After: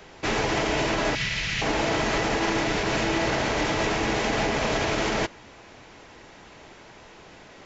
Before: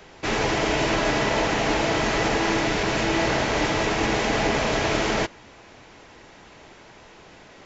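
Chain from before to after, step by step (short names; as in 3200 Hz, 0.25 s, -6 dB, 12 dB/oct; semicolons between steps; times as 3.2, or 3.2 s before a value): limiter -15.5 dBFS, peak gain reduction 6 dB; 1.15–1.62 EQ curve 180 Hz 0 dB, 250 Hz -18 dB, 850 Hz -19 dB, 2200 Hz +4 dB, 4800 Hz +3 dB, 7600 Hz -2 dB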